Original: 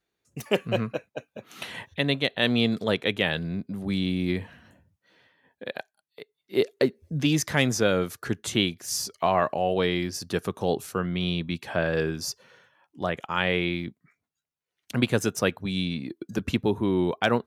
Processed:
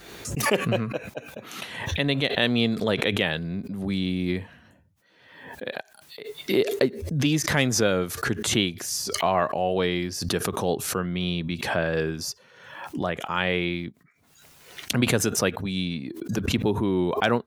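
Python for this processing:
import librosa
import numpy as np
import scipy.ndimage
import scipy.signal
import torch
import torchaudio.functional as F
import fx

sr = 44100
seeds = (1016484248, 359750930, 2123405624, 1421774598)

y = fx.pre_swell(x, sr, db_per_s=56.0)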